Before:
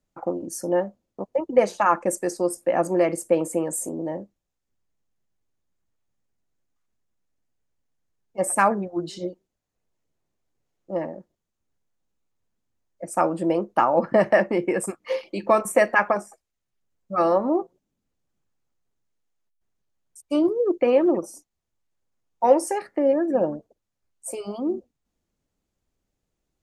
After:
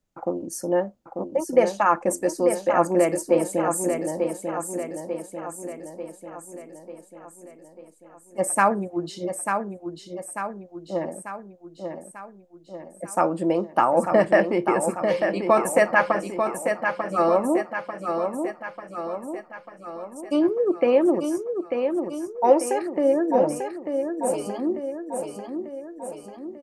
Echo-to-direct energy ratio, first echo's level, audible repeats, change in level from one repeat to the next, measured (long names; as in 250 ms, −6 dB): −4.5 dB, −6.0 dB, 6, −5.0 dB